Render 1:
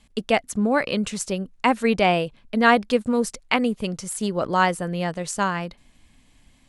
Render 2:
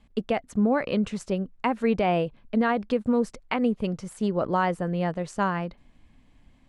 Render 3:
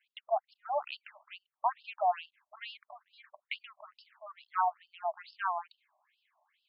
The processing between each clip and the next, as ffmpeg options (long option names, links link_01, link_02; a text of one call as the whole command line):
ffmpeg -i in.wav -af "lowpass=frequency=1300:poles=1,alimiter=limit=-14dB:level=0:latency=1:release=99" out.wav
ffmpeg -i in.wav -filter_complex "[0:a]highpass=frequency=390:width_type=q:width=4.3,asplit=2[link_01][link_02];[link_02]asoftclip=type=tanh:threshold=-19.5dB,volume=-3dB[link_03];[link_01][link_03]amix=inputs=2:normalize=0,afftfilt=real='re*between(b*sr/1024,790*pow(3800/790,0.5+0.5*sin(2*PI*2.3*pts/sr))/1.41,790*pow(3800/790,0.5+0.5*sin(2*PI*2.3*pts/sr))*1.41)':imag='im*between(b*sr/1024,790*pow(3800/790,0.5+0.5*sin(2*PI*2.3*pts/sr))/1.41,790*pow(3800/790,0.5+0.5*sin(2*PI*2.3*pts/sr))*1.41)':win_size=1024:overlap=0.75,volume=-6dB" out.wav